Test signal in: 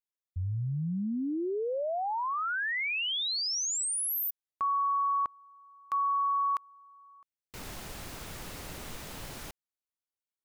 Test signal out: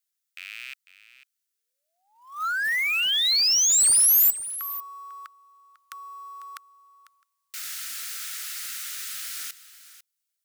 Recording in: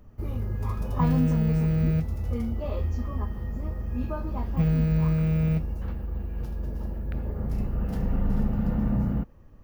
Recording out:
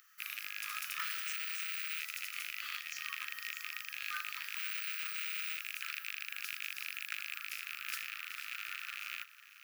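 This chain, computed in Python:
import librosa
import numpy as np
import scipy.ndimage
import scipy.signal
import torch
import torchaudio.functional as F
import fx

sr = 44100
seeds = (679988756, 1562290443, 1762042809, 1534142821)

p1 = fx.rattle_buzz(x, sr, strikes_db=-29.0, level_db=-32.0)
p2 = fx.over_compress(p1, sr, threshold_db=-30.0, ratio=-1.0)
p3 = p1 + F.gain(torch.from_numpy(p2), -2.0).numpy()
p4 = np.clip(p3, -10.0 ** (-19.0 / 20.0), 10.0 ** (-19.0 / 20.0))
p5 = scipy.signal.sosfilt(scipy.signal.cheby1(6, 1.0, 1300.0, 'highpass', fs=sr, output='sos'), p4)
p6 = fx.high_shelf(p5, sr, hz=4200.0, db=10.0)
p7 = fx.quant_float(p6, sr, bits=2)
y = p7 + 10.0 ** (-15.0 / 20.0) * np.pad(p7, (int(498 * sr / 1000.0), 0))[:len(p7)]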